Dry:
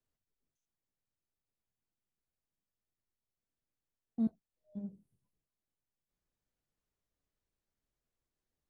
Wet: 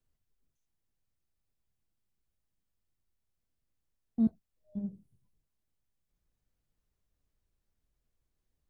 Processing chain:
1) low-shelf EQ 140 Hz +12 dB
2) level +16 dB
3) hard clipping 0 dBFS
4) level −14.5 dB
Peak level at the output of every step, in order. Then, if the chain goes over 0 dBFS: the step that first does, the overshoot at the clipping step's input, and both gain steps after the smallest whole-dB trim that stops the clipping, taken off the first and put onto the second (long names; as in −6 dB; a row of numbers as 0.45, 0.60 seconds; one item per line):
−21.0, −5.0, −5.0, −19.5 dBFS
no step passes full scale